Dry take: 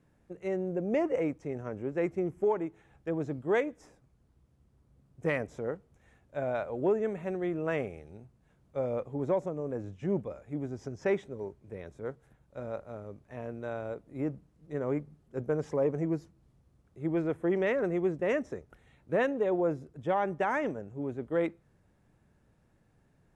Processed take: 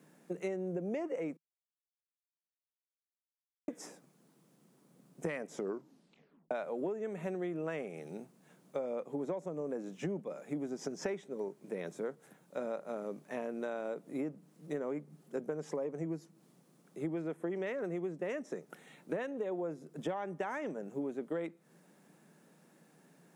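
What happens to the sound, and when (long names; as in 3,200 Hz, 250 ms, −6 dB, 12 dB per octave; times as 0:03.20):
0:01.37–0:03.68: silence
0:05.52: tape stop 0.99 s
whole clip: elliptic high-pass filter 160 Hz; high-shelf EQ 5,400 Hz +10.5 dB; downward compressor 12 to 1, threshold −41 dBFS; level +7 dB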